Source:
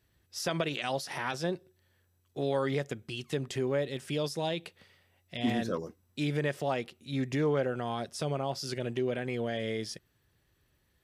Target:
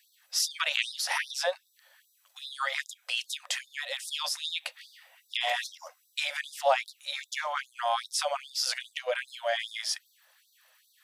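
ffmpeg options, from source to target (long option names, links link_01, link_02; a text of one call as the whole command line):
ffmpeg -i in.wav -filter_complex "[0:a]asplit=2[link_01][link_02];[link_02]acompressor=threshold=-42dB:ratio=10,volume=0dB[link_03];[link_01][link_03]amix=inputs=2:normalize=0,afftfilt=real='re*gte(b*sr/1024,480*pow(3600/480,0.5+0.5*sin(2*PI*2.5*pts/sr)))':imag='im*gte(b*sr/1024,480*pow(3600/480,0.5+0.5*sin(2*PI*2.5*pts/sr)))':win_size=1024:overlap=0.75,volume=7.5dB" out.wav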